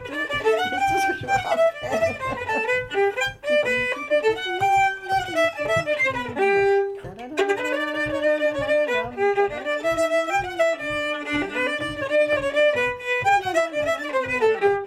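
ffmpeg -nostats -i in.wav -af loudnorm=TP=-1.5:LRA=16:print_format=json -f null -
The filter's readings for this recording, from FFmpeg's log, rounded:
"input_i" : "-22.0",
"input_tp" : "-8.8",
"input_lra" : "1.7",
"input_thresh" : "-32.1",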